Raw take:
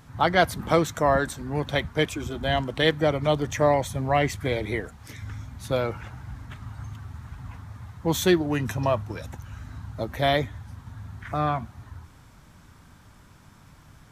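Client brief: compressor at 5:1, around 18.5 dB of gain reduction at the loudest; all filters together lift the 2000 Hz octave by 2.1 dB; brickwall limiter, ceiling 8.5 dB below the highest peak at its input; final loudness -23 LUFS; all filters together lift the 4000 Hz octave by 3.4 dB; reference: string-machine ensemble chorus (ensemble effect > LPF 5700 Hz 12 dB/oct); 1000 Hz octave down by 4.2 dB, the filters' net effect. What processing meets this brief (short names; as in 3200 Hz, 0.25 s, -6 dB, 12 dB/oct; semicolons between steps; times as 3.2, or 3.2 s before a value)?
bell 1000 Hz -7.5 dB; bell 2000 Hz +4 dB; bell 4000 Hz +4 dB; compressor 5:1, threshold -37 dBFS; limiter -31 dBFS; ensemble effect; LPF 5700 Hz 12 dB/oct; gain +23 dB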